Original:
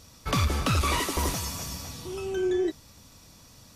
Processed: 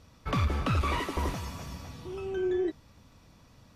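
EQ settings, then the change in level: tone controls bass +1 dB, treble -14 dB; -3.0 dB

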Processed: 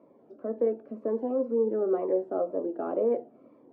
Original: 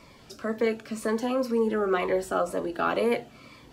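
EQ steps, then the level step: Butterworth band-pass 410 Hz, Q 0.98; 0.0 dB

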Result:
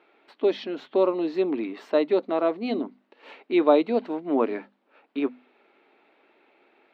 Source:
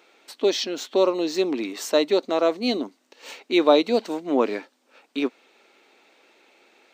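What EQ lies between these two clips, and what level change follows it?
distance through air 460 m; hum notches 50/100/150/200/250 Hz; band-stop 510 Hz, Q 12; 0.0 dB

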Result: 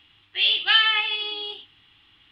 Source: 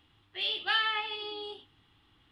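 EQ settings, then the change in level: peaking EQ 2.7 kHz +13.5 dB 1.6 oct; 0.0 dB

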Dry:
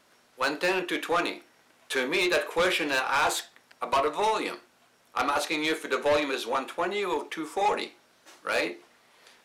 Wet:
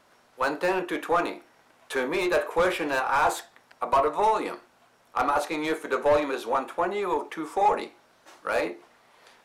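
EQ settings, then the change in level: peaking EQ 860 Hz +7 dB 2 oct; dynamic bell 3.5 kHz, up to -6 dB, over -39 dBFS, Q 0.72; bass shelf 130 Hz +10 dB; -2.5 dB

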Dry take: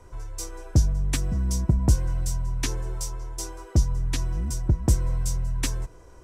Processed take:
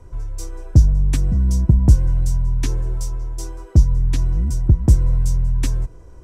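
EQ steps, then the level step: bass shelf 360 Hz +11.5 dB; -2.5 dB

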